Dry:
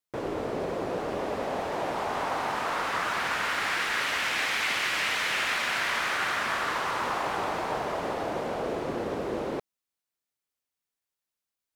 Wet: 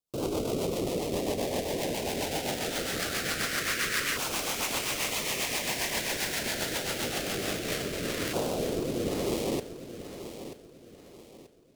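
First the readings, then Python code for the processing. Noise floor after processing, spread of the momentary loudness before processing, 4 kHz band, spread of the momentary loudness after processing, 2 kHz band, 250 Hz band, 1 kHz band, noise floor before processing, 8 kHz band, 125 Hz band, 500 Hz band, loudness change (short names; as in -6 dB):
-52 dBFS, 6 LU, +0.5 dB, 6 LU, -5.5 dB, +3.5 dB, -8.5 dB, under -85 dBFS, +7.5 dB, +5.0 dB, +0.5 dB, -1.5 dB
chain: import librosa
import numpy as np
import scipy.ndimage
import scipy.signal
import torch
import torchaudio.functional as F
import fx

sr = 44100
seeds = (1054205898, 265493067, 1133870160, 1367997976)

p1 = fx.halfwave_hold(x, sr)
p2 = fx.filter_lfo_notch(p1, sr, shape='saw_down', hz=0.24, low_hz=780.0, high_hz=1900.0, q=0.7)
p3 = fx.rotary_switch(p2, sr, hz=7.5, then_hz=0.9, switch_at_s=7.12)
y = p3 + fx.echo_feedback(p3, sr, ms=934, feedback_pct=34, wet_db=-11.5, dry=0)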